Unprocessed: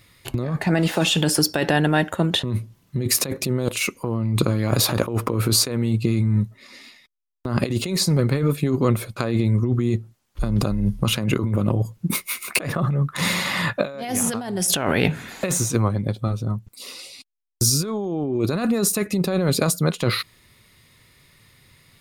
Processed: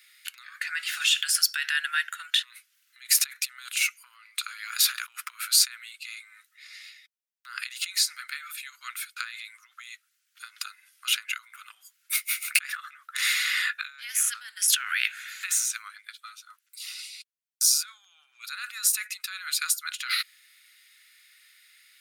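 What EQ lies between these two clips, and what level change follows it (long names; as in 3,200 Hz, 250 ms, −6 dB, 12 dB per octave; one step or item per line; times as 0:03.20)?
Chebyshev high-pass filter 1,400 Hz, order 5
0.0 dB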